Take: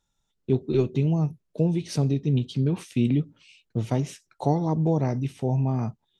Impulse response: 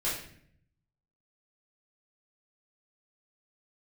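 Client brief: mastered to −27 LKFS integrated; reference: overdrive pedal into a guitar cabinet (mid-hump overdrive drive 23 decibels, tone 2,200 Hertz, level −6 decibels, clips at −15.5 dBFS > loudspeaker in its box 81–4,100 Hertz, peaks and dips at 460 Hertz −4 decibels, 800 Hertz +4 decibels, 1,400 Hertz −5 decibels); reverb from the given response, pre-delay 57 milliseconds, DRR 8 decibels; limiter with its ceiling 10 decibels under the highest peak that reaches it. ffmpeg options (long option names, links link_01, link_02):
-filter_complex "[0:a]alimiter=limit=-19.5dB:level=0:latency=1,asplit=2[link_01][link_02];[1:a]atrim=start_sample=2205,adelay=57[link_03];[link_02][link_03]afir=irnorm=-1:irlink=0,volume=-15dB[link_04];[link_01][link_04]amix=inputs=2:normalize=0,asplit=2[link_05][link_06];[link_06]highpass=frequency=720:poles=1,volume=23dB,asoftclip=type=tanh:threshold=-15.5dB[link_07];[link_05][link_07]amix=inputs=2:normalize=0,lowpass=frequency=2200:poles=1,volume=-6dB,highpass=81,equalizer=frequency=460:width_type=q:width=4:gain=-4,equalizer=frequency=800:width_type=q:width=4:gain=4,equalizer=frequency=1400:width_type=q:width=4:gain=-5,lowpass=frequency=4100:width=0.5412,lowpass=frequency=4100:width=1.3066,volume=-0.5dB"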